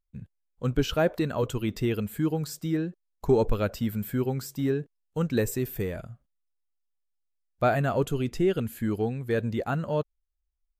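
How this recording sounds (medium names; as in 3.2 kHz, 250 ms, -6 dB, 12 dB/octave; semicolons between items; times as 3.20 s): noise floor -79 dBFS; spectral tilt -6.5 dB/octave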